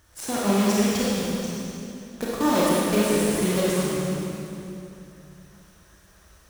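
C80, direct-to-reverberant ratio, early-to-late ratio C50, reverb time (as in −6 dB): −2.0 dB, −7.0 dB, −5.0 dB, 2.9 s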